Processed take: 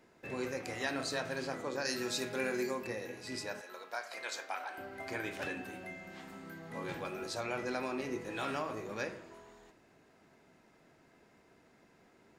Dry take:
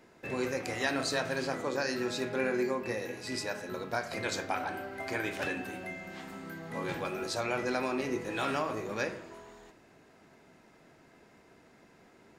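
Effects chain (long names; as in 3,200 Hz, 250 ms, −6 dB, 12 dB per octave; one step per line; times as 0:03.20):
0:01.85–0:02.87: high-shelf EQ 3,800 Hz +12 dB
0:03.61–0:04.78: high-pass filter 660 Hz 12 dB per octave
level −5 dB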